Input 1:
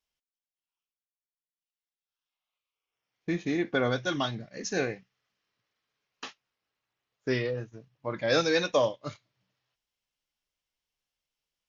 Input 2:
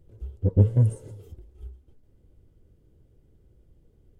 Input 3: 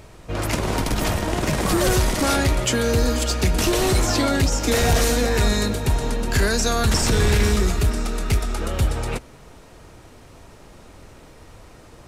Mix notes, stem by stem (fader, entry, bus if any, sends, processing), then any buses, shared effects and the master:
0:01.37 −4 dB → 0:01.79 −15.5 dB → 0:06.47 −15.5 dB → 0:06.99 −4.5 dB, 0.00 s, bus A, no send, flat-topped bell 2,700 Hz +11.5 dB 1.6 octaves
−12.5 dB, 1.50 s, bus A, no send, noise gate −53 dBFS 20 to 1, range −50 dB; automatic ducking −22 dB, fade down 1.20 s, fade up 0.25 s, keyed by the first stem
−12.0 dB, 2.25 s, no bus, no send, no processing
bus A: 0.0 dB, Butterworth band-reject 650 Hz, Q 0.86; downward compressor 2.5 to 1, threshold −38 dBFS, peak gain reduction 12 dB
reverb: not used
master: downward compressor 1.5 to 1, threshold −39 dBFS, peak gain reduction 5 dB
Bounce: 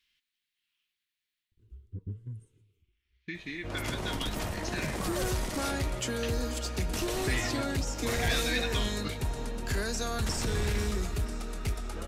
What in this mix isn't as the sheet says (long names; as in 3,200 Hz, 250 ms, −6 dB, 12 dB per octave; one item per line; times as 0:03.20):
stem 1 −4.0 dB → +5.0 dB
stem 3: entry 2.25 s → 3.35 s
master: missing downward compressor 1.5 to 1, threshold −39 dBFS, peak gain reduction 5 dB